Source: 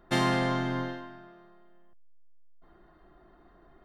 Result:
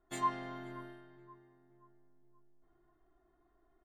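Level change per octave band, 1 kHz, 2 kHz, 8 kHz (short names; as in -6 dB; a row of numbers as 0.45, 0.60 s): -5.5 dB, -16.0 dB, n/a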